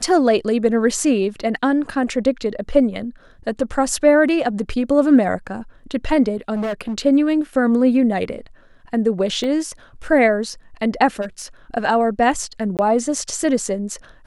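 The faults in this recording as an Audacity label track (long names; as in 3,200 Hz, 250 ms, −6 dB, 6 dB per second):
6.540000	6.980000	clipping −20 dBFS
9.440000	9.440000	drop-out 2 ms
11.210000	11.420000	clipping −22.5 dBFS
12.770000	12.790000	drop-out 18 ms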